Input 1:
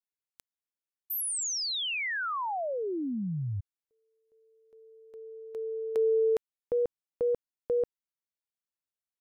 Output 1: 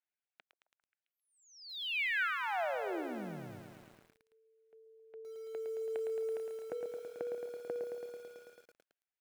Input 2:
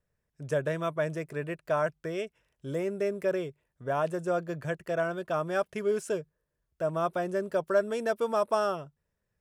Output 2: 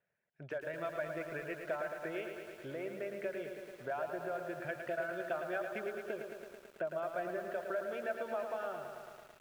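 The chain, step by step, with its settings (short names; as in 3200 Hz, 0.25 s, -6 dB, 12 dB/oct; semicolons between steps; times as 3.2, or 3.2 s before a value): compressor 8:1, threshold -37 dBFS; reverb removal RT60 0.78 s; speaker cabinet 240–3200 Hz, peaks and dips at 280 Hz -8 dB, 450 Hz -5 dB, 690 Hz +4 dB, 1100 Hz -8 dB, 1500 Hz +6 dB, 2300 Hz +4 dB; delay with a stepping band-pass 0.133 s, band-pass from 450 Hz, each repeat 0.7 oct, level -12 dB; dynamic EQ 320 Hz, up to +4 dB, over -60 dBFS, Q 2.8; lo-fi delay 0.11 s, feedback 80%, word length 10-bit, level -6.5 dB; gain +1 dB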